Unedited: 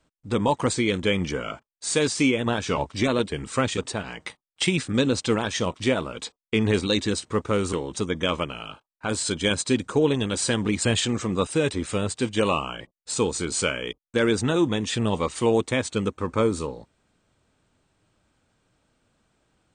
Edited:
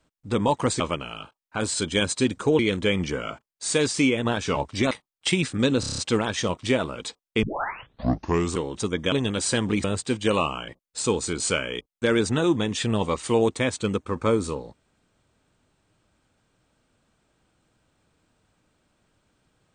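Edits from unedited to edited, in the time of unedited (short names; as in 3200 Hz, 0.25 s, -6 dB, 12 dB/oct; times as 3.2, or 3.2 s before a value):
3.12–4.26 cut
5.15 stutter 0.03 s, 7 plays
6.6 tape start 1.13 s
8.29–10.08 move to 0.8
10.8–11.96 cut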